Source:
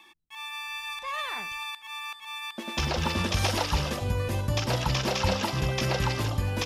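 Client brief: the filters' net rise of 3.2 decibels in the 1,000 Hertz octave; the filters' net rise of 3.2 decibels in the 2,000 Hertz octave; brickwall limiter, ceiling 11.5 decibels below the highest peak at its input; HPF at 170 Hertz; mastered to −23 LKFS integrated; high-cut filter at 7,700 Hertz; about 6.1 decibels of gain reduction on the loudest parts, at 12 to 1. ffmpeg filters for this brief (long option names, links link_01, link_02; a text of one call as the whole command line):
ffmpeg -i in.wav -af "highpass=170,lowpass=7700,equalizer=frequency=1000:width_type=o:gain=3,equalizer=frequency=2000:width_type=o:gain=3.5,acompressor=threshold=-28dB:ratio=12,volume=13.5dB,alimiter=limit=-15.5dB:level=0:latency=1" out.wav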